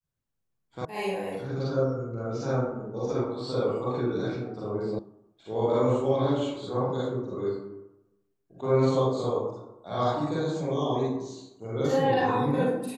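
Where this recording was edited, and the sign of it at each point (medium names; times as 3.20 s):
0.85 s: sound stops dead
4.99 s: sound stops dead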